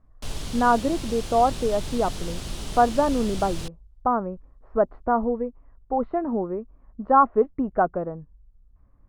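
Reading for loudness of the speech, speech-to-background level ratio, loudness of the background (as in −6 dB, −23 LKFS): −24.0 LKFS, 11.0 dB, −35.0 LKFS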